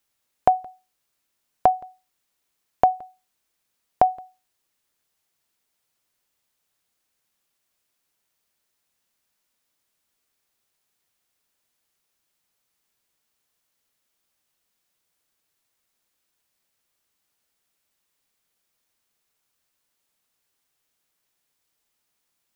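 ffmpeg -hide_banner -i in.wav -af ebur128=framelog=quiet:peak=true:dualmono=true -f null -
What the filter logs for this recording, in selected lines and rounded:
Integrated loudness:
  I:         -20.4 LUFS
  Threshold: -32.3 LUFS
Loudness range:
  LRA:         4.8 LU
  Threshold: -45.9 LUFS
  LRA low:   -28.6 LUFS
  LRA high:  -23.9 LUFS
True peak:
  Peak:       -2.5 dBFS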